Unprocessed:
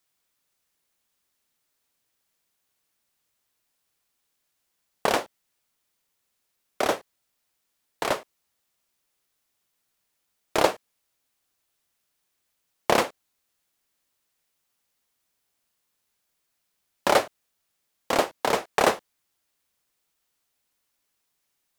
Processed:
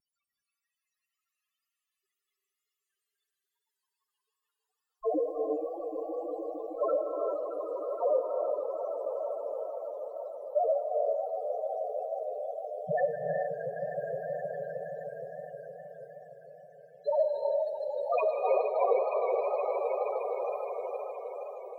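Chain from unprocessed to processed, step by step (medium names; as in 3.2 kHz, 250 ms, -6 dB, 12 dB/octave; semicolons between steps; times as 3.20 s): high-pass 220 Hz 24 dB/octave; hum notches 60/120/180/240/300/360/420/480/540/600 Hz; in parallel at -3 dB: peak limiter -12.5 dBFS, peak gain reduction 8.5 dB; on the sum: sine folder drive 18 dB, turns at -1 dBFS; loudest bins only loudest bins 1; echo with a slow build-up 156 ms, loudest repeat 5, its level -10 dB; wow and flutter 95 cents; gated-style reverb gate 440 ms rising, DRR 2.5 dB; tape noise reduction on one side only decoder only; trim -6.5 dB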